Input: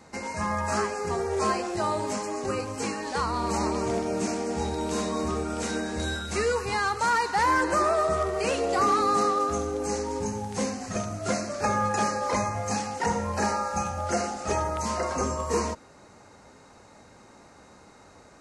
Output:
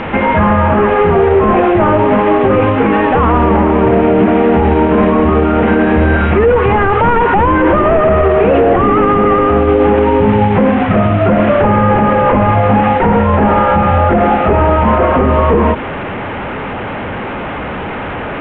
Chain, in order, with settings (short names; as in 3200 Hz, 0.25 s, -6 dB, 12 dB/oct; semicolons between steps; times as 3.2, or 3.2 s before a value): delta modulation 16 kbps, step -38.5 dBFS; air absorption 280 m; maximiser +26 dB; gain -1 dB